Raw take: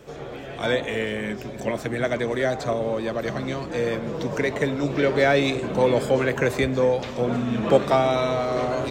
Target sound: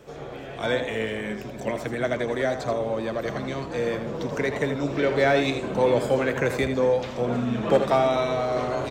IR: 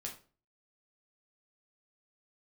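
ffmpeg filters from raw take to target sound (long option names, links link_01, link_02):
-filter_complex "[0:a]equalizer=frequency=840:width_type=o:width=1.6:gain=2,asoftclip=type=hard:threshold=-7.5dB,asplit=2[link_01][link_02];[link_02]aecho=0:1:81:0.355[link_03];[link_01][link_03]amix=inputs=2:normalize=0,volume=-3dB"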